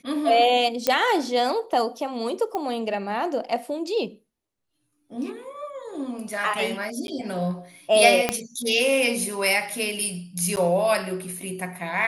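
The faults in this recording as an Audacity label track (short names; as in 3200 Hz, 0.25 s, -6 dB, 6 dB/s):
0.870000	0.870000	pop -5 dBFS
2.550000	2.550000	pop -16 dBFS
7.070000	7.080000	gap 11 ms
8.290000	8.290000	pop -6 dBFS
10.560000	10.570000	gap 9.8 ms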